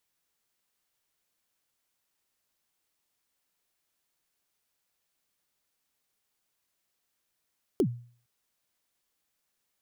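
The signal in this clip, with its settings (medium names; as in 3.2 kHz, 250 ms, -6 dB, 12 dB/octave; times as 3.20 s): kick drum length 0.46 s, from 440 Hz, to 120 Hz, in 74 ms, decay 0.46 s, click on, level -18 dB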